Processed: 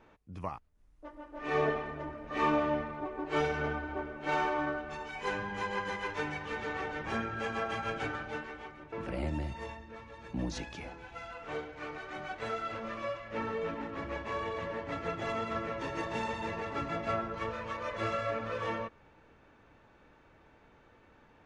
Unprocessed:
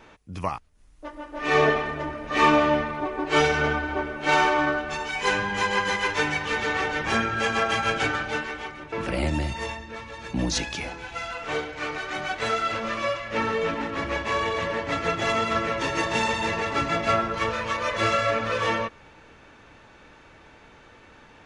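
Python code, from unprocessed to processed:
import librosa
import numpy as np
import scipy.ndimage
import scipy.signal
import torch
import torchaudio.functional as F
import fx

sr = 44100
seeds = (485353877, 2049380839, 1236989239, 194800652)

y = fx.high_shelf(x, sr, hz=2200.0, db=-10.5)
y = y * 10.0 ** (-8.5 / 20.0)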